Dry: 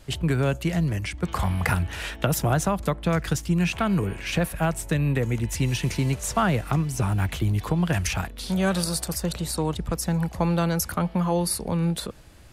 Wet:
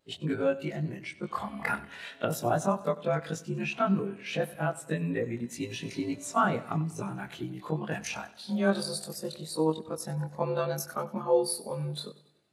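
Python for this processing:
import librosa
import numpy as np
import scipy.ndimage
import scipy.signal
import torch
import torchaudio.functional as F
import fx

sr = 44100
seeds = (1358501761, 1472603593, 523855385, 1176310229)

p1 = fx.frame_reverse(x, sr, frame_ms=51.0)
p2 = scipy.signal.sosfilt(scipy.signal.butter(2, 240.0, 'highpass', fs=sr, output='sos'), p1)
p3 = fx.peak_eq(p2, sr, hz=4000.0, db=4.0, octaves=0.35)
p4 = p3 + fx.echo_feedback(p3, sr, ms=95, feedback_pct=59, wet_db=-13, dry=0)
y = fx.spectral_expand(p4, sr, expansion=1.5)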